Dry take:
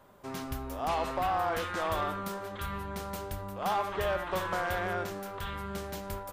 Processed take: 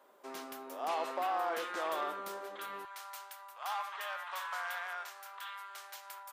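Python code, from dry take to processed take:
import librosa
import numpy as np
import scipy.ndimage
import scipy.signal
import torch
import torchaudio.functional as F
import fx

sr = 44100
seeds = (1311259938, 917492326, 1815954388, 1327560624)

y = fx.highpass(x, sr, hz=fx.steps((0.0, 310.0), (2.85, 880.0)), slope=24)
y = F.gain(torch.from_numpy(y), -4.0).numpy()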